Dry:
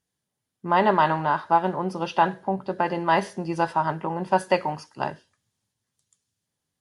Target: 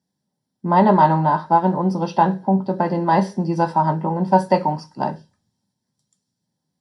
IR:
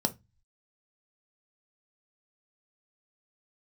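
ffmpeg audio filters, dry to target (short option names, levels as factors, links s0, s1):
-filter_complex "[1:a]atrim=start_sample=2205[s0];[0:a][s0]afir=irnorm=-1:irlink=0,volume=0.501"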